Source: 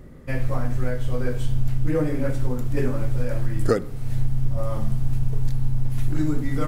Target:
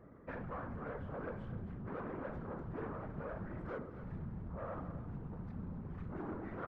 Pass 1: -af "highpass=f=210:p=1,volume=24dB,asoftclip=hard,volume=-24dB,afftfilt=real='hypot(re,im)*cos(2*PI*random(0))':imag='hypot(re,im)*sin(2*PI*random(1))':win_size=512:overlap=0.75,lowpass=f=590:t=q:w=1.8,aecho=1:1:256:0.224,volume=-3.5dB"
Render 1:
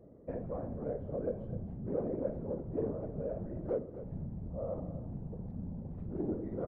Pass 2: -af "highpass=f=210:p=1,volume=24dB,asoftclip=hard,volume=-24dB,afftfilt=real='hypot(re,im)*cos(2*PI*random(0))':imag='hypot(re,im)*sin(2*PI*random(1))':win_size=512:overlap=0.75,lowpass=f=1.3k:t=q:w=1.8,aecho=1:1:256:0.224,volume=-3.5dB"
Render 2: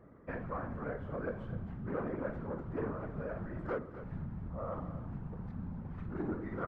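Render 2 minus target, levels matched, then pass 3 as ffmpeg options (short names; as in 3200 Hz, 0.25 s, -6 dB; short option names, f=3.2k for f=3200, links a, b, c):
overloaded stage: distortion -6 dB
-af "highpass=f=210:p=1,volume=32.5dB,asoftclip=hard,volume=-32.5dB,afftfilt=real='hypot(re,im)*cos(2*PI*random(0))':imag='hypot(re,im)*sin(2*PI*random(1))':win_size=512:overlap=0.75,lowpass=f=1.3k:t=q:w=1.8,aecho=1:1:256:0.224,volume=-3.5dB"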